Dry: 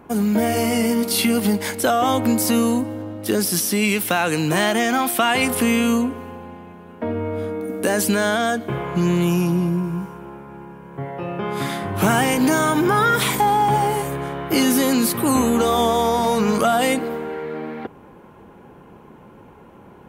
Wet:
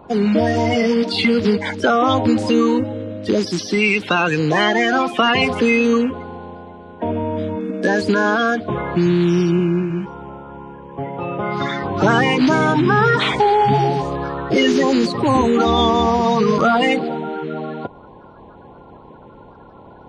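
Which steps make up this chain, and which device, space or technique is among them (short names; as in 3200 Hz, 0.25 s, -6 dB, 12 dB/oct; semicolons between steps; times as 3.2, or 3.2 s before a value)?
clip after many re-uploads (LPF 4900 Hz 24 dB/oct; bin magnitudes rounded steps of 30 dB); gain +3.5 dB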